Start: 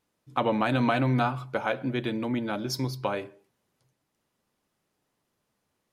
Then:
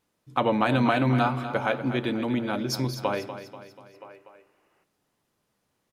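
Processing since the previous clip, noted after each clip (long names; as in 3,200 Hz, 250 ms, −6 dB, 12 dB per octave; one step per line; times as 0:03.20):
repeating echo 243 ms, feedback 50%, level −11.5 dB
gain on a spectral selection 0:03.94–0:04.83, 280–3,000 Hz +11 dB
level +2 dB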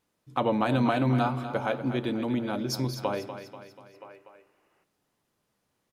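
dynamic equaliser 2,000 Hz, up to −5 dB, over −40 dBFS, Q 0.87
level −1.5 dB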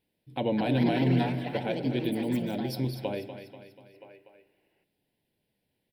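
delay with pitch and tempo change per echo 303 ms, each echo +5 semitones, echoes 3, each echo −6 dB
phaser with its sweep stopped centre 2,900 Hz, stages 4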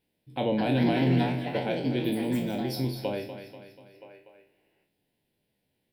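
peak hold with a decay on every bin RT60 0.40 s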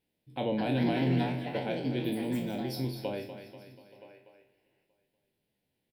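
single-tap delay 876 ms −23.5 dB
level −4 dB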